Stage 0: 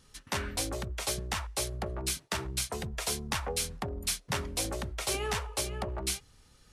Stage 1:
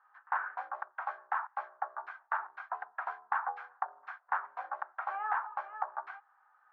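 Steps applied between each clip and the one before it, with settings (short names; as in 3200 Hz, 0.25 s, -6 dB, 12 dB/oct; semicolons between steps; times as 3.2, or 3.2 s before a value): Chebyshev band-pass 770–1600 Hz, order 3; gain +6.5 dB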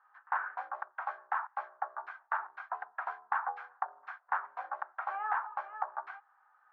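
nothing audible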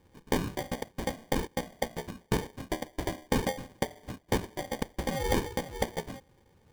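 sample-and-hold 33×; gain +5 dB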